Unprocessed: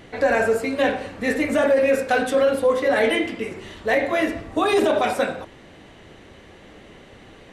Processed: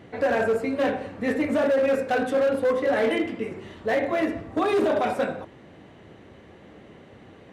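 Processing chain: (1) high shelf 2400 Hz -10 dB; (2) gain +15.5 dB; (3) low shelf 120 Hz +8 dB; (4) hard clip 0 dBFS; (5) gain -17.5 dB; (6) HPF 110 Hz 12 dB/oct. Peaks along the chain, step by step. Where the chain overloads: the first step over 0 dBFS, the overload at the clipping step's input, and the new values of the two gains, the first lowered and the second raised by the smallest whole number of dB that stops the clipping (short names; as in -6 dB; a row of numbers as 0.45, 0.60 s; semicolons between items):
-9.5, +6.0, +6.5, 0.0, -17.5, -14.0 dBFS; step 2, 6.5 dB; step 2 +8.5 dB, step 5 -10.5 dB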